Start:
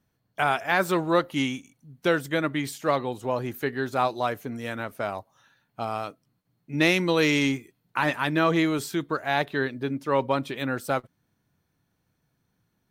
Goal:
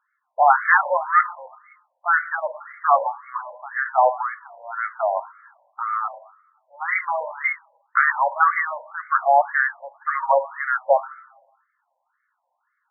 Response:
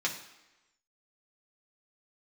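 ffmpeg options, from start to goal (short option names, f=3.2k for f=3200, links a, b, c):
-filter_complex "[0:a]asplit=3[a][b][c];[a]afade=t=out:st=4.09:d=0.02[d];[b]acompressor=threshold=-28dB:ratio=10,afade=t=in:st=4.09:d=0.02,afade=t=out:st=4.85:d=0.02[e];[c]afade=t=in:st=4.85:d=0.02[f];[d][e][f]amix=inputs=3:normalize=0,asplit=2[g][h];[1:a]atrim=start_sample=2205,lowpass=2.9k[i];[h][i]afir=irnorm=-1:irlink=0,volume=-8dB[j];[g][j]amix=inputs=2:normalize=0,afftfilt=real='re*between(b*sr/1024,720*pow(1600/720,0.5+0.5*sin(2*PI*1.9*pts/sr))/1.41,720*pow(1600/720,0.5+0.5*sin(2*PI*1.9*pts/sr))*1.41)':imag='im*between(b*sr/1024,720*pow(1600/720,0.5+0.5*sin(2*PI*1.9*pts/sr))/1.41,720*pow(1600/720,0.5+0.5*sin(2*PI*1.9*pts/sr))*1.41)':win_size=1024:overlap=0.75,volume=8.5dB"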